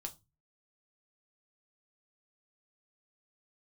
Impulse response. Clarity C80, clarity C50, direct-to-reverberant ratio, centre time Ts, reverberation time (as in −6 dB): 26.0 dB, 19.5 dB, 4.5 dB, 6 ms, 0.25 s